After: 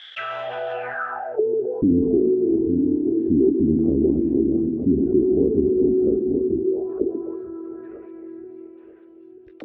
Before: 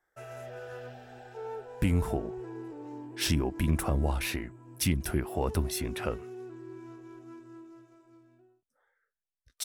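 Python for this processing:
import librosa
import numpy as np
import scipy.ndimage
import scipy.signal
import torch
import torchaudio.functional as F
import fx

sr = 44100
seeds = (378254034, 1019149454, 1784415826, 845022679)

p1 = fx.reverse_delay_fb(x, sr, ms=469, feedback_pct=47, wet_db=-7.5)
p2 = fx.level_steps(p1, sr, step_db=20)
p3 = p1 + F.gain(torch.from_numpy(p2), -1.0).numpy()
p4 = fx.auto_wah(p3, sr, base_hz=270.0, top_hz=3200.0, q=3.5, full_db=-32.0, direction='down')
p5 = fx.high_shelf(p4, sr, hz=2300.0, db=8.5)
p6 = fx.notch(p5, sr, hz=940.0, q=9.6)
p7 = fx.echo_stepped(p6, sr, ms=134, hz=260.0, octaves=1.4, feedback_pct=70, wet_db=-9.5)
p8 = fx.filter_sweep_lowpass(p7, sr, from_hz=3300.0, to_hz=400.0, start_s=0.71, end_s=1.46, q=6.4)
p9 = fx.low_shelf(p8, sr, hz=90.0, db=9.5)
p10 = fx.env_flatten(p9, sr, amount_pct=50)
y = F.gain(torch.from_numpy(p10), 6.0).numpy()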